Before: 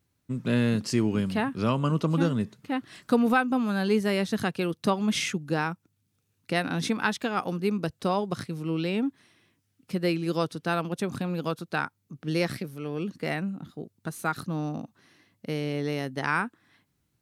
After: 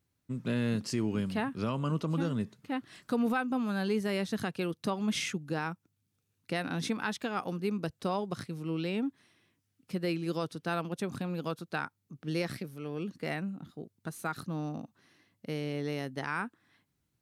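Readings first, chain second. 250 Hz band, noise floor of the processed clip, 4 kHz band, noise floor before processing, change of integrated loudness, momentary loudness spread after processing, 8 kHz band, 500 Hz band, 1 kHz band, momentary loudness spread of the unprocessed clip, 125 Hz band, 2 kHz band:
−5.5 dB, −80 dBFS, −5.5 dB, −75 dBFS, −6.0 dB, 9 LU, −5.0 dB, −6.0 dB, −6.5 dB, 10 LU, −5.5 dB, −6.5 dB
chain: brickwall limiter −16.5 dBFS, peak gain reduction 4 dB
level −5 dB

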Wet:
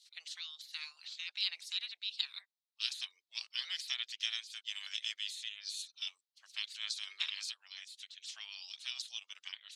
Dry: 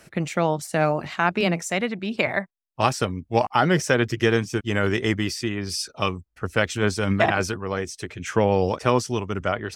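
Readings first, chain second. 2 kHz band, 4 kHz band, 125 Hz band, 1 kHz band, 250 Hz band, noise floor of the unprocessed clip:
−19.5 dB, −3.5 dB, below −40 dB, −38.5 dB, below −40 dB, −68 dBFS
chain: gate on every frequency bin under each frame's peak −15 dB weak
four-pole ladder band-pass 4,400 Hz, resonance 60%
level +7 dB

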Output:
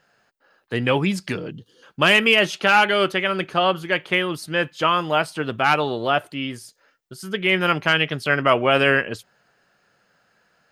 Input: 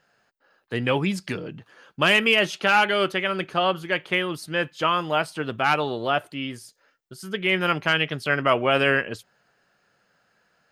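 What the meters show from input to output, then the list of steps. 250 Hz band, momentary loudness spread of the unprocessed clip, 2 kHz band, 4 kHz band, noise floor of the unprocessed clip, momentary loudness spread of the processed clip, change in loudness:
+3.0 dB, 14 LU, +3.0 dB, +3.0 dB, −68 dBFS, 14 LU, +3.0 dB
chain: gain on a spectral selection 0:01.52–0:01.83, 520–2,800 Hz −18 dB
level +3 dB

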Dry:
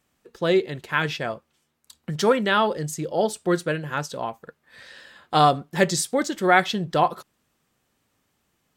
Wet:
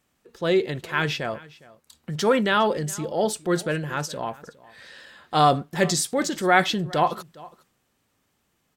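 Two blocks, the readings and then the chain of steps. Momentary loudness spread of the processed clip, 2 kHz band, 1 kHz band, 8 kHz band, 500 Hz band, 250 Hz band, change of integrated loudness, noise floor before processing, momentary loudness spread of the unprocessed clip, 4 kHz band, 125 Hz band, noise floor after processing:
12 LU, −0.5 dB, −1.0 dB, +1.5 dB, −1.0 dB, 0.0 dB, −0.5 dB, −72 dBFS, 13 LU, +0.5 dB, +0.5 dB, −72 dBFS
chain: transient designer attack −3 dB, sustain +4 dB
single-tap delay 410 ms −21.5 dB

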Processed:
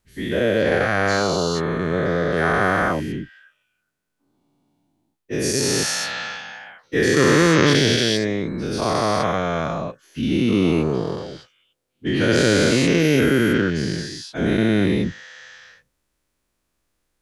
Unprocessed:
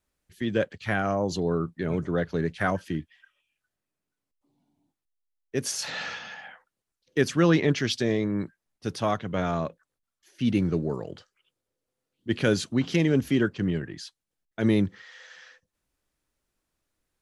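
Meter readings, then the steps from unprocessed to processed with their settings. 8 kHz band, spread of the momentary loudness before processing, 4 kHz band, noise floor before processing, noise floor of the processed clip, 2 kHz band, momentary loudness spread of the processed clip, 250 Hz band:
+11.5 dB, 16 LU, +11.5 dB, below −85 dBFS, −74 dBFS, +11.0 dB, 13 LU, +6.5 dB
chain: every bin's largest magnitude spread in time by 480 ms

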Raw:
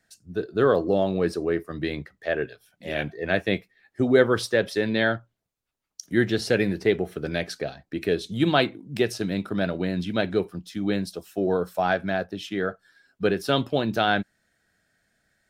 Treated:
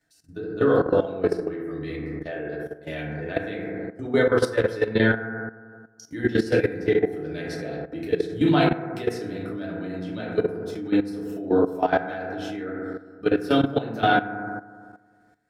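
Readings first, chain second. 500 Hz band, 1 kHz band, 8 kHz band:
+0.5 dB, +2.0 dB, can't be measured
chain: feedback delay network reverb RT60 1.6 s, low-frequency decay 1.05×, high-frequency decay 0.25×, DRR −6 dB
output level in coarse steps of 14 dB
level −3.5 dB

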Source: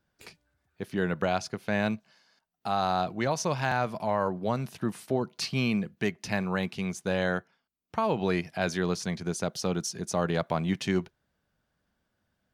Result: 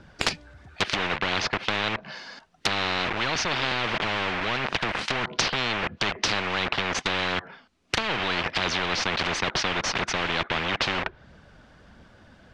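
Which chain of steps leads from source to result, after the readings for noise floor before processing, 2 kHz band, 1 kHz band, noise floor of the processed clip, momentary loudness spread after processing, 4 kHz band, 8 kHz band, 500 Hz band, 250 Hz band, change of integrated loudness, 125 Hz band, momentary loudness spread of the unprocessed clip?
−79 dBFS, +9.5 dB, +3.0 dB, −54 dBFS, 4 LU, +13.0 dB, +4.5 dB, −2.0 dB, −4.5 dB, +4.0 dB, −3.5 dB, 5 LU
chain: in parallel at −5.5 dB: log-companded quantiser 2 bits
on the sum: phase shifter 1.5 Hz, delay 4.1 ms, feedback 30%
treble cut that deepens with the level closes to 1,800 Hz, closed at −24.5 dBFS
high-frequency loss of the air 100 metres
every bin compressed towards the loudest bin 10 to 1
level +8.5 dB

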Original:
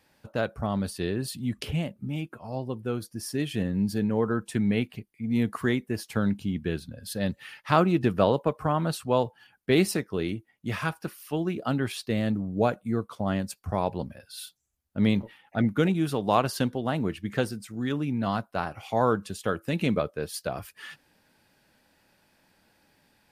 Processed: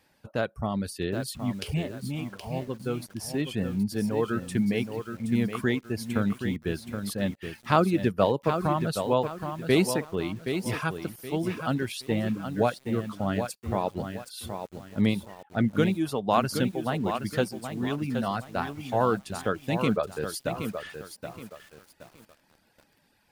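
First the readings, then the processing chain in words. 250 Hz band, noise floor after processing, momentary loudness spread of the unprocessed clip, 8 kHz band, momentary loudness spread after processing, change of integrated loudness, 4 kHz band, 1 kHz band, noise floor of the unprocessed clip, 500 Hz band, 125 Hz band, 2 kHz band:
−0.5 dB, −66 dBFS, 11 LU, +0.5 dB, 10 LU, −0.5 dB, 0.0 dB, 0.0 dB, −67 dBFS, 0.0 dB, −1.0 dB, 0.0 dB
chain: reverb reduction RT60 0.78 s
feedback echo at a low word length 772 ms, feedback 35%, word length 8 bits, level −7.5 dB

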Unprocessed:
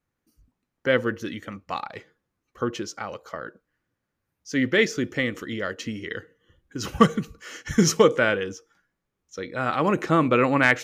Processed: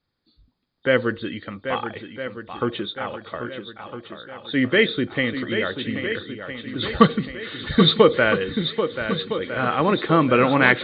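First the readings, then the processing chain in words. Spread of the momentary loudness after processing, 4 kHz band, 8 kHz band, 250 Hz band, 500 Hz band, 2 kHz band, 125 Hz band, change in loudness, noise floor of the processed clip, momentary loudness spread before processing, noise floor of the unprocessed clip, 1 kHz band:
16 LU, +7.5 dB, below −40 dB, +3.0 dB, +3.5 dB, +3.0 dB, +3.0 dB, +2.5 dB, −73 dBFS, 19 LU, −82 dBFS, +3.0 dB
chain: hearing-aid frequency compression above 3,100 Hz 4 to 1
feedback echo with a long and a short gap by turns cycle 1,310 ms, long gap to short 1.5 to 1, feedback 47%, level −9 dB
level +2.5 dB

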